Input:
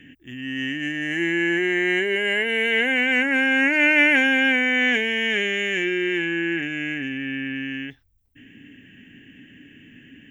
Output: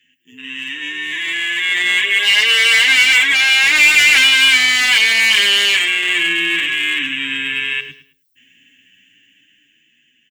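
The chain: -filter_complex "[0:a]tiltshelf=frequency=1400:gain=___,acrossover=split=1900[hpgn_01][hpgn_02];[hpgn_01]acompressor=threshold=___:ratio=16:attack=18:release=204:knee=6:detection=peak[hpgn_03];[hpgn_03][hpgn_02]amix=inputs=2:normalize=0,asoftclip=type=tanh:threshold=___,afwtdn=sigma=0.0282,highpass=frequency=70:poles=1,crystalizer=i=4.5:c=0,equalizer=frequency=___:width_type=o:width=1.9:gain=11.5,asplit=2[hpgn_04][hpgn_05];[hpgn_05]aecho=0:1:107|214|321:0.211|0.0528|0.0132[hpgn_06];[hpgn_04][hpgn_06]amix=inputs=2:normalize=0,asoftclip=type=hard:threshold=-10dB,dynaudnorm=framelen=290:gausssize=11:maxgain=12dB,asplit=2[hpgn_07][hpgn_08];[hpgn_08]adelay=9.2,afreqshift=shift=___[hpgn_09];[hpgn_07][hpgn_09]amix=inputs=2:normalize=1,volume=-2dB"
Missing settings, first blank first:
-3.5, -32dB, -15dB, 4700, 0.48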